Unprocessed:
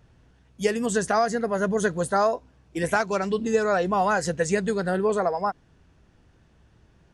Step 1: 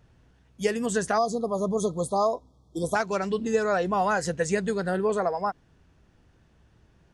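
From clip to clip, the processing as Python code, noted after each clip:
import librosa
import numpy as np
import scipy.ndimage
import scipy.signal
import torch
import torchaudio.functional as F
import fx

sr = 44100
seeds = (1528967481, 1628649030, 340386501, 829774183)

y = fx.spec_erase(x, sr, start_s=1.18, length_s=1.77, low_hz=1300.0, high_hz=3200.0)
y = y * librosa.db_to_amplitude(-2.0)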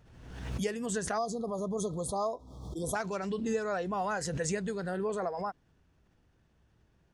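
y = fx.pre_swell(x, sr, db_per_s=49.0)
y = y * librosa.db_to_amplitude(-8.5)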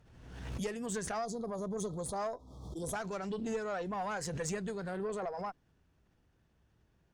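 y = fx.tube_stage(x, sr, drive_db=26.0, bias=0.35)
y = y * librosa.db_to_amplitude(-2.0)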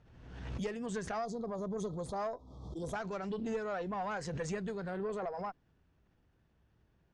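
y = fx.air_absorb(x, sr, metres=97.0)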